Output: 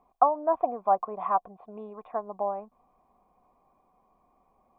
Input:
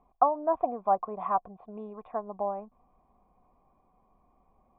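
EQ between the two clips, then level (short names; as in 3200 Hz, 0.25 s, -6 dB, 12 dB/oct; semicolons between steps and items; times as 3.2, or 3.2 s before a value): low shelf 190 Hz -10.5 dB; +2.5 dB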